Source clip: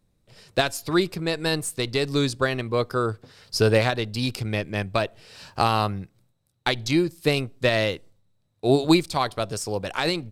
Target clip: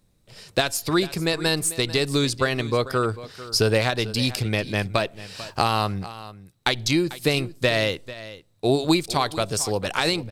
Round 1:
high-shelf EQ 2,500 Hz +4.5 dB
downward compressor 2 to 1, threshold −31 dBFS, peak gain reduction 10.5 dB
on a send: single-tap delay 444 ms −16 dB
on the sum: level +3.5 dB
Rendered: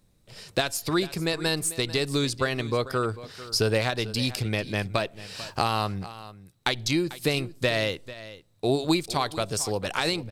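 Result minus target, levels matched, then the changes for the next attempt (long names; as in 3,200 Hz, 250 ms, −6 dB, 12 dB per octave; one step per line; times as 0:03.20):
downward compressor: peak gain reduction +4 dB
change: downward compressor 2 to 1, threshold −23.5 dBFS, peak gain reduction 7 dB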